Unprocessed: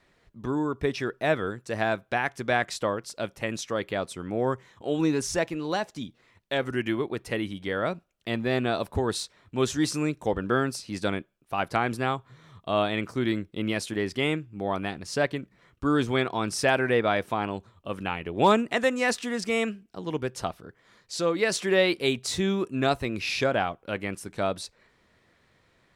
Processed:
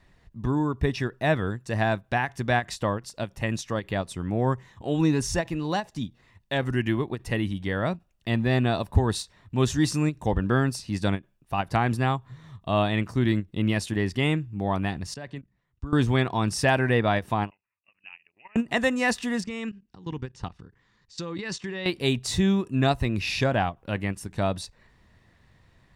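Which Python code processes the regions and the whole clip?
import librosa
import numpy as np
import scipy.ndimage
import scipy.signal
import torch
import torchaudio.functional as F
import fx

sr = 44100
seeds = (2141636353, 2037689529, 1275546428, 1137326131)

y = fx.chain(x, sr, fx.lowpass(hz=9000.0, slope=24),
    fx.level_steps(step_db=19),
    fx.band_widen(depth_pct=40), at=(15.14, 15.93))
y = fx.chain(y, sr, fx.level_steps(step_db=17),
    fx.bandpass_q(hz=2600.0, q=6.4),
    fx.resample_bad(factor=8, down='none', up='filtered'), at=(17.5, 18.56))
y = fx.chain(y, sr, fx.lowpass(hz=7300.0, slope=24),
    fx.peak_eq(hz=640.0, db=-12.5, octaves=0.3),
    fx.level_steps(step_db=17), at=(19.44, 21.86))
y = fx.low_shelf(y, sr, hz=160.0, db=12.0)
y = y + 0.31 * np.pad(y, (int(1.1 * sr / 1000.0), 0))[:len(y)]
y = fx.end_taper(y, sr, db_per_s=380.0)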